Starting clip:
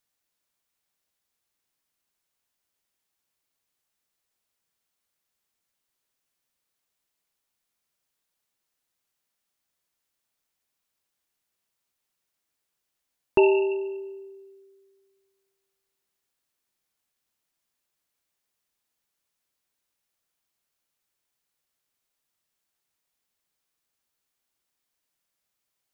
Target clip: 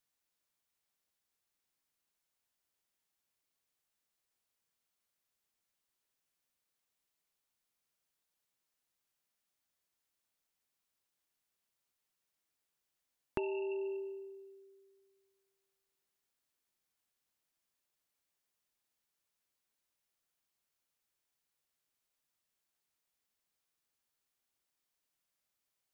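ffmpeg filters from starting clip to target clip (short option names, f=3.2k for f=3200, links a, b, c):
-af "acompressor=threshold=-29dB:ratio=10,volume=-5dB"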